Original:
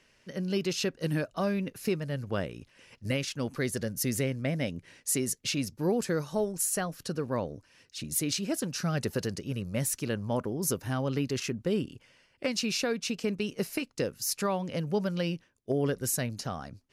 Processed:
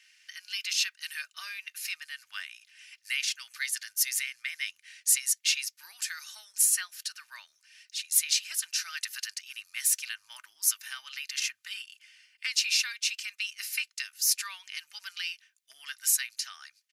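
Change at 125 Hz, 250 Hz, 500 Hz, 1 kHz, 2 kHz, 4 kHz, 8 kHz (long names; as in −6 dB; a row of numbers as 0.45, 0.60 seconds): below −40 dB, below −40 dB, below −40 dB, −12.5 dB, +4.5 dB, +6.5 dB, +6.5 dB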